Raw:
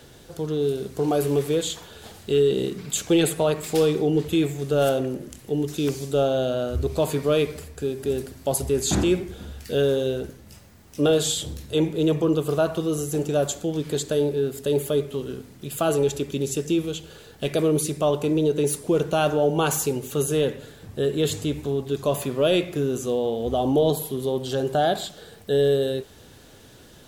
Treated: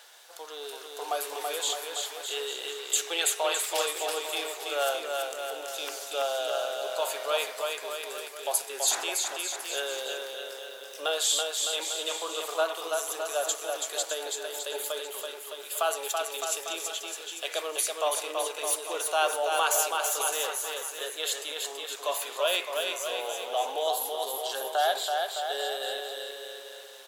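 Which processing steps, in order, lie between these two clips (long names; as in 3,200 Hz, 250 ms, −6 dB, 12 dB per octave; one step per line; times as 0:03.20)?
high-pass filter 720 Hz 24 dB per octave
on a send: bouncing-ball delay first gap 330 ms, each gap 0.85×, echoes 5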